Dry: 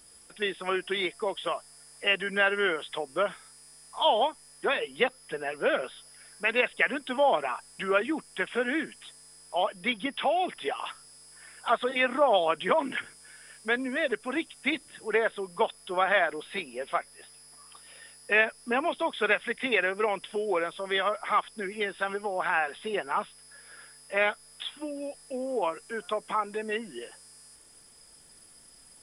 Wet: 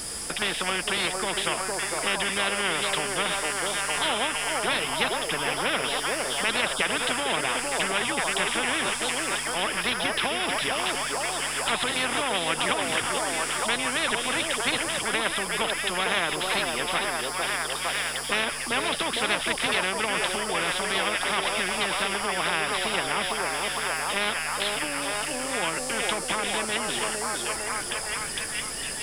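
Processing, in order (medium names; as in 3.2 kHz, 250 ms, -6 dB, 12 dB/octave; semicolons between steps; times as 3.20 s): on a send: repeats whose band climbs or falls 457 ms, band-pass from 510 Hz, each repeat 0.7 oct, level -1 dB; on the sum: spectrum-flattening compressor 4:1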